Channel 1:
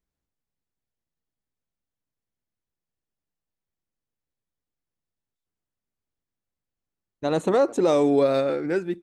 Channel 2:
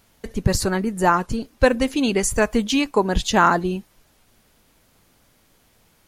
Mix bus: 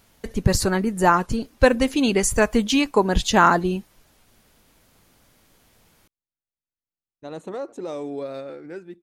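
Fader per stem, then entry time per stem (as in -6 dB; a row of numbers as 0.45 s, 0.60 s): -11.5 dB, +0.5 dB; 0.00 s, 0.00 s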